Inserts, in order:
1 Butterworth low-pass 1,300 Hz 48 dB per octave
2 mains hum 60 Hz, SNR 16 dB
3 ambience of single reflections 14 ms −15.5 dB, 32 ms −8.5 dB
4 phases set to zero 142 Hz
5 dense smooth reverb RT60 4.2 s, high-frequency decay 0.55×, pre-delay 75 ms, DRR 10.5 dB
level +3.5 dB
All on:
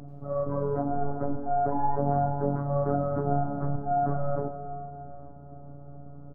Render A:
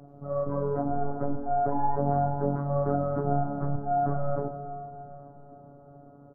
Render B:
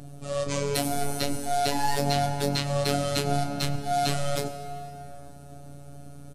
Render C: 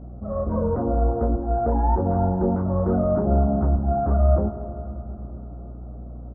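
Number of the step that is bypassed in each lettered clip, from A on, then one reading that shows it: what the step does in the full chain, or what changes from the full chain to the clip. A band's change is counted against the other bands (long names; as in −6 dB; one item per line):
2, change in momentary loudness spread −7 LU
1, change in crest factor +6.5 dB
4, 1 kHz band −6.5 dB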